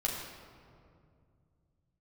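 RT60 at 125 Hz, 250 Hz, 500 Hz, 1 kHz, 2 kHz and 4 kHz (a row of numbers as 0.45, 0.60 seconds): 3.9, 3.1, 2.5, 2.1, 1.7, 1.2 seconds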